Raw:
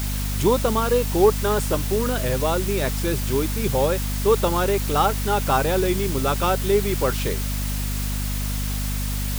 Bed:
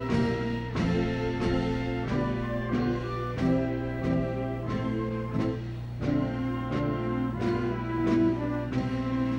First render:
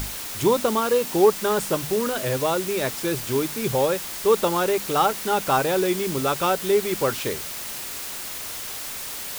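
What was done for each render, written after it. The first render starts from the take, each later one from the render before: notches 50/100/150/200/250 Hz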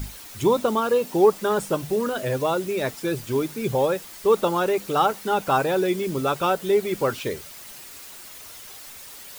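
denoiser 10 dB, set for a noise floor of -33 dBFS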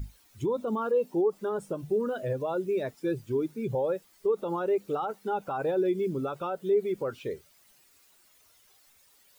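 limiter -17.5 dBFS, peak gain reduction 11 dB; spectral expander 1.5:1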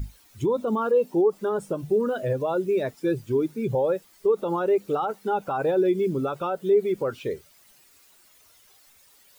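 gain +5 dB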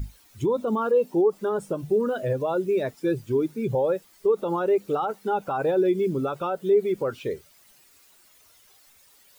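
nothing audible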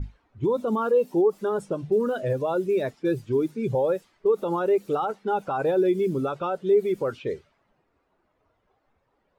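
low-pass opened by the level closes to 830 Hz, open at -21.5 dBFS

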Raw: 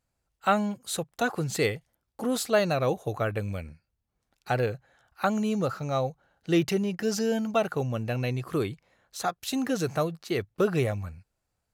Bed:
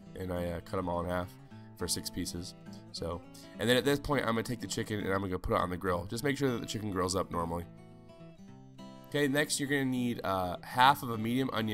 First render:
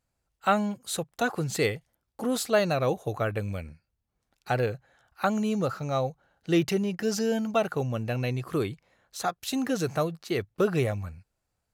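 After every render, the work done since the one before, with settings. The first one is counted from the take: nothing audible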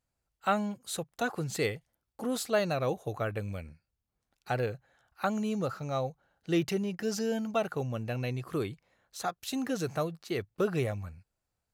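gain -4.5 dB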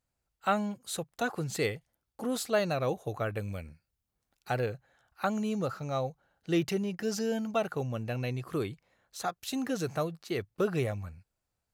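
3.34–4.59 high shelf 8400 Hz +5 dB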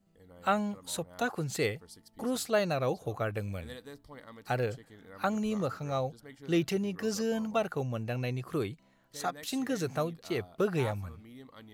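add bed -19 dB

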